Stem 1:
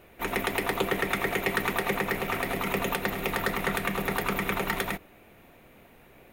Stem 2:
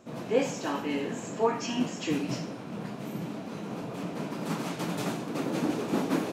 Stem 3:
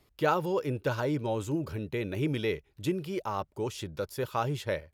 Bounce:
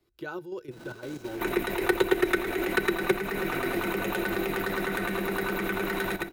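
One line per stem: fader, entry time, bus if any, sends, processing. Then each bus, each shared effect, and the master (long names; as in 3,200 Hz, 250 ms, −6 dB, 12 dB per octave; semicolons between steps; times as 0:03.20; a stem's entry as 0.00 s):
+1.5 dB, 1.20 s, no send, echo send −4.5 dB, notch filter 3,300 Hz, Q 20
−19.0 dB, 0.65 s, no send, no echo send, comparator with hysteresis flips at −45 dBFS
−15.0 dB, 0.00 s, no send, no echo send, no processing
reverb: not used
echo: single-tap delay 113 ms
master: output level in coarse steps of 11 dB; hollow resonant body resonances 350/1,500/3,900 Hz, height 16 dB, ringing for 90 ms; multiband upward and downward compressor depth 40%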